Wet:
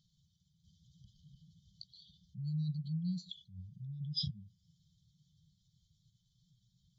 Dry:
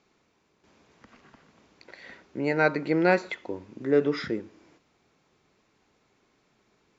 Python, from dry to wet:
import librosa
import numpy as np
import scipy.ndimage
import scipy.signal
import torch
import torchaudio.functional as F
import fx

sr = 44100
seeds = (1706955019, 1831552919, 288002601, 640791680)

y = fx.spec_expand(x, sr, power=1.7)
y = fx.brickwall_bandstop(y, sr, low_hz=180.0, high_hz=3000.0)
y = F.gain(torch.from_numpy(y), 5.5).numpy()